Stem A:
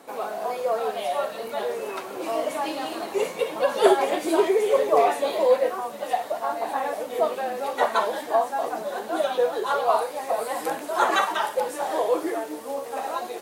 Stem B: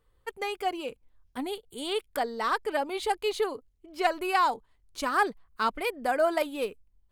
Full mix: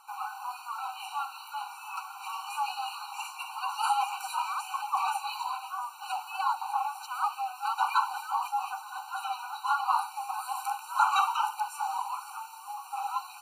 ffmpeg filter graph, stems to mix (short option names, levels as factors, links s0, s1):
-filter_complex "[0:a]volume=0.841[s0];[1:a]adelay=2050,volume=0.501[s1];[s0][s1]amix=inputs=2:normalize=0,afftfilt=real='re*eq(mod(floor(b*sr/1024/770),2),1)':imag='im*eq(mod(floor(b*sr/1024/770),2),1)':win_size=1024:overlap=0.75"